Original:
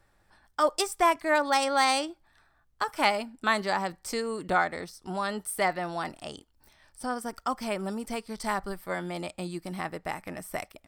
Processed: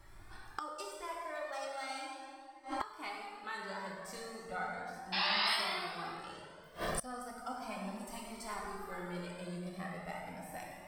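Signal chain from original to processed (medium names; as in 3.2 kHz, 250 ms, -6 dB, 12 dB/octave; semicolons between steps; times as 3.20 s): gain riding within 4 dB 0.5 s; 5.12–5.55 s: painted sound noise 620–5400 Hz -18 dBFS; 7.95–8.44 s: treble shelf 5.5 kHz +7.5 dB; plate-style reverb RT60 2.3 s, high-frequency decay 0.65×, DRR -3 dB; inverted gate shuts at -31 dBFS, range -26 dB; Shepard-style flanger rising 0.36 Hz; trim +12.5 dB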